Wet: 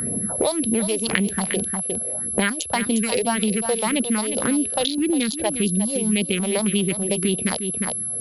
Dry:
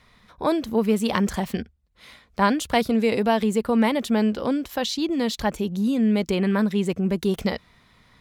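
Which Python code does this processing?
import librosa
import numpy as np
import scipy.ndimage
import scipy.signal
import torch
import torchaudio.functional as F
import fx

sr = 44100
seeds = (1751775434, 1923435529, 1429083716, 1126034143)

p1 = fx.wiener(x, sr, points=41)
p2 = scipy.signal.sosfilt(scipy.signal.butter(2, 100.0, 'highpass', fs=sr, output='sos'), p1)
p3 = fx.env_lowpass(p2, sr, base_hz=860.0, full_db=-19.0)
p4 = fx.weighting(p3, sr, curve='D')
p5 = fx.over_compress(p4, sr, threshold_db=-28.0, ratio=-0.5)
p6 = p4 + (p5 * 10.0 ** (-2.0 / 20.0))
p7 = fx.phaser_stages(p6, sr, stages=4, low_hz=210.0, high_hz=1500.0, hz=1.8, feedback_pct=35)
p8 = p7 + 10.0 ** (-31.0 / 20.0) * np.sin(2.0 * np.pi * 11000.0 * np.arange(len(p7)) / sr)
p9 = p8 + fx.echo_single(p8, sr, ms=355, db=-11.5, dry=0)
p10 = fx.band_squash(p9, sr, depth_pct=100)
y = p10 * 10.0 ** (1.0 / 20.0)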